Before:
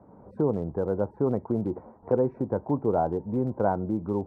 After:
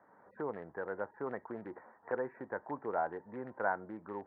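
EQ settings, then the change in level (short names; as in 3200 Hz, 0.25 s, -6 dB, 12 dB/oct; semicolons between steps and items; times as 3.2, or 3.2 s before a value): band-pass 1800 Hz, Q 7.3; air absorption 250 m; +16.5 dB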